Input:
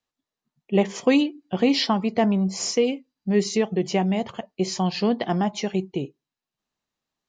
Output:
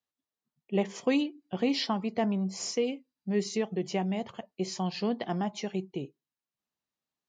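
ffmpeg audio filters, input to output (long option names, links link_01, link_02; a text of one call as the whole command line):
ffmpeg -i in.wav -af "highpass=62,volume=-8dB" out.wav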